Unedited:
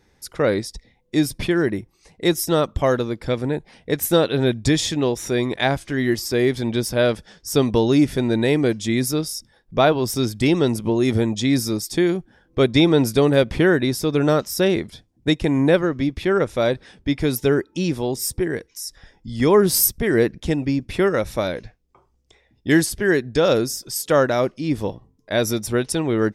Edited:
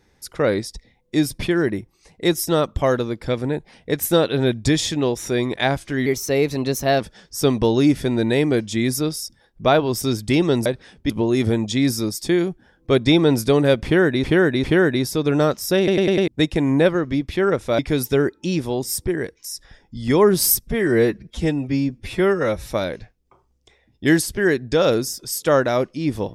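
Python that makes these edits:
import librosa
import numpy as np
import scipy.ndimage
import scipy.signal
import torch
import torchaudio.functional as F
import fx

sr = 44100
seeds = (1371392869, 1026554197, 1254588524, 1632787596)

y = fx.edit(x, sr, fx.speed_span(start_s=6.06, length_s=1.07, speed=1.13),
    fx.repeat(start_s=13.52, length_s=0.4, count=3),
    fx.stutter_over(start_s=14.66, slice_s=0.1, count=5),
    fx.move(start_s=16.67, length_s=0.44, to_s=10.78),
    fx.stretch_span(start_s=19.95, length_s=1.38, factor=1.5), tone=tone)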